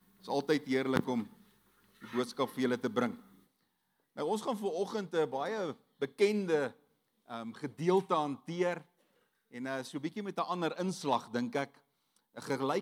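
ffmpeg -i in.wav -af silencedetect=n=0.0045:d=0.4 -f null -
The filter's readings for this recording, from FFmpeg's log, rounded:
silence_start: 1.33
silence_end: 2.02 | silence_duration: 0.69
silence_start: 3.20
silence_end: 4.17 | silence_duration: 0.98
silence_start: 6.71
silence_end: 7.28 | silence_duration: 0.57
silence_start: 8.81
silence_end: 9.53 | silence_duration: 0.72
silence_start: 11.67
silence_end: 12.37 | silence_duration: 0.70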